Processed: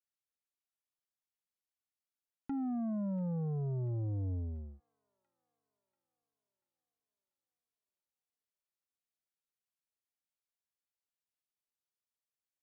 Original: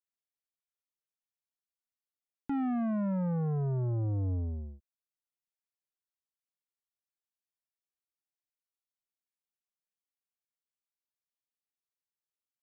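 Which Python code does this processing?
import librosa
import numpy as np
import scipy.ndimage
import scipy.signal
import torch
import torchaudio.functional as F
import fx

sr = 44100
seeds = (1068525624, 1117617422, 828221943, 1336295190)

y = fx.env_lowpass_down(x, sr, base_hz=740.0, full_db=-31.5)
y = fx.echo_wet_highpass(y, sr, ms=688, feedback_pct=55, hz=2200.0, wet_db=-12)
y = F.gain(torch.from_numpy(y), -4.5).numpy()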